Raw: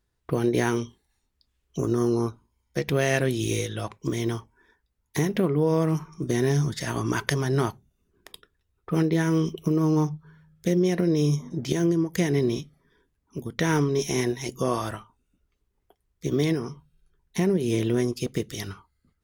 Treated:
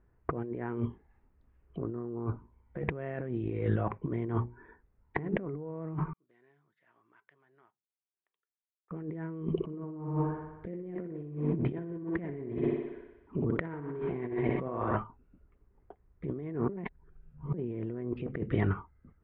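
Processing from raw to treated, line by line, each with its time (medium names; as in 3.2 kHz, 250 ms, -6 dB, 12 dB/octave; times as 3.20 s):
4.33–5.46 s: hum notches 60/120/180/240/300/360/420/480 Hz
6.13–8.91 s: band-pass filter 7.6 kHz, Q 16
9.51–14.96 s: thinning echo 61 ms, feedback 70%, high-pass 180 Hz, level -6 dB
16.69–17.54 s: reverse
whole clip: Bessel low-pass 1.3 kHz, order 8; compressor with a negative ratio -35 dBFS, ratio -1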